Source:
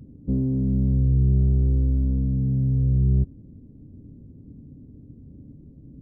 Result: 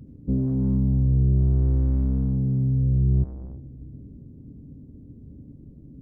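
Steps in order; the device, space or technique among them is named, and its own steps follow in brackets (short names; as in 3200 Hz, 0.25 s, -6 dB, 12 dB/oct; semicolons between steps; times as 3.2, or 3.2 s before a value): saturated reverb return (on a send at -8 dB: reverb RT60 1.7 s, pre-delay 68 ms + soft clip -27 dBFS, distortion -6 dB)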